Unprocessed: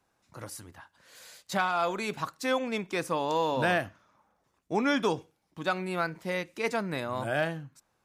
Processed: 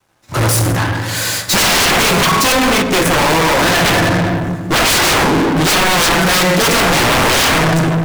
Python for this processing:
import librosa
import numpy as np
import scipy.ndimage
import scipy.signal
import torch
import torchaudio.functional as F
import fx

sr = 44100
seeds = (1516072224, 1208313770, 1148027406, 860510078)

y = fx.rev_fdn(x, sr, rt60_s=1.3, lf_ratio=1.55, hf_ratio=0.45, size_ms=54.0, drr_db=1.0)
y = fx.level_steps(y, sr, step_db=16, at=(2.52, 3.86))
y = fx.fold_sine(y, sr, drive_db=20, ceiling_db=-12.0)
y = fx.leveller(y, sr, passes=5)
y = fx.upward_expand(y, sr, threshold_db=-30.0, expansion=2.5)